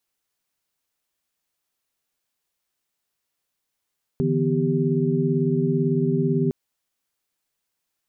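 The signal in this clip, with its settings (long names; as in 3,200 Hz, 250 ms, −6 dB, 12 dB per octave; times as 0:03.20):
held notes D3/E3/B3/G4 sine, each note −24 dBFS 2.31 s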